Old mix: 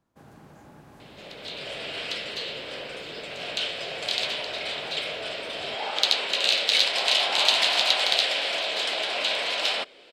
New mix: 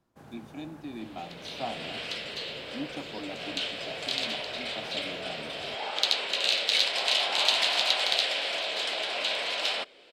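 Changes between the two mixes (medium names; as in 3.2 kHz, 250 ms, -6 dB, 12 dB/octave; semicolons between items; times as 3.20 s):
speech: unmuted; second sound -3.5 dB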